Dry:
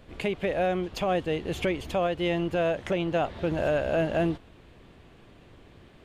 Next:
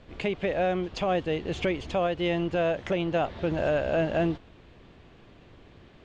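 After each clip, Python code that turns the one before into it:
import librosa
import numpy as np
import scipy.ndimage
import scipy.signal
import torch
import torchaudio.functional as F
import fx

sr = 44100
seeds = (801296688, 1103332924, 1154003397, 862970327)

y = scipy.signal.sosfilt(scipy.signal.butter(4, 6800.0, 'lowpass', fs=sr, output='sos'), x)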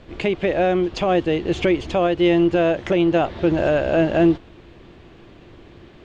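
y = fx.peak_eq(x, sr, hz=340.0, db=7.5, octaves=0.25)
y = y * librosa.db_to_amplitude(6.5)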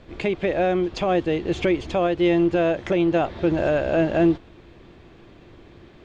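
y = fx.notch(x, sr, hz=2900.0, q=19.0)
y = y * librosa.db_to_amplitude(-2.5)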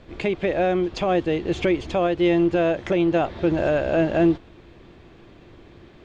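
y = x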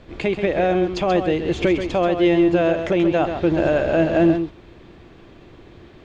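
y = x + 10.0 ** (-8.0 / 20.0) * np.pad(x, (int(132 * sr / 1000.0), 0))[:len(x)]
y = y * librosa.db_to_amplitude(2.0)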